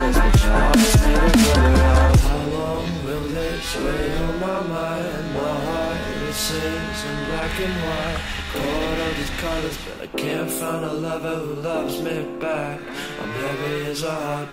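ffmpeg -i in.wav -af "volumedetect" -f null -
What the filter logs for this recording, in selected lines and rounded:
mean_volume: -20.3 dB
max_volume: -7.1 dB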